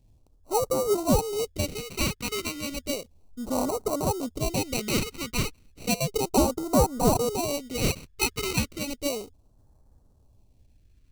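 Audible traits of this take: aliases and images of a low sample rate 1700 Hz, jitter 0%; phasing stages 2, 0.33 Hz, lowest notch 680–2400 Hz

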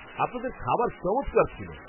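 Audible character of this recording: tremolo triangle 8.1 Hz, depth 30%; a quantiser's noise floor 6-bit, dither triangular; MP3

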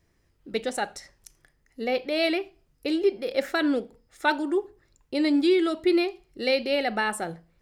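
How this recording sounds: noise floor -68 dBFS; spectral tilt -1.5 dB/oct

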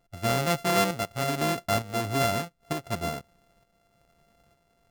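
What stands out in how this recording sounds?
a buzz of ramps at a fixed pitch in blocks of 64 samples; tremolo saw up 1.1 Hz, depth 55%

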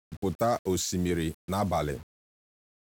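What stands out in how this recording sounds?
a quantiser's noise floor 8-bit, dither none; SBC

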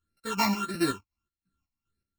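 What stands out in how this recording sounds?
a buzz of ramps at a fixed pitch in blocks of 32 samples; phasing stages 8, 1.6 Hz, lowest notch 430–1000 Hz; chopped level 2.7 Hz, depth 60%, duty 45%; a shimmering, thickened sound

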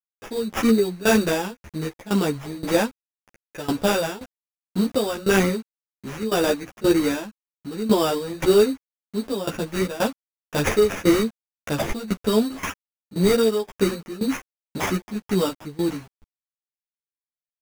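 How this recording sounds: a quantiser's noise floor 8-bit, dither none; tremolo saw down 1.9 Hz, depth 90%; aliases and images of a low sample rate 4200 Hz, jitter 0%; a shimmering, thickened sound

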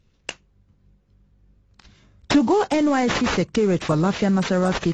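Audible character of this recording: aliases and images of a low sample rate 9200 Hz, jitter 20%; AAC

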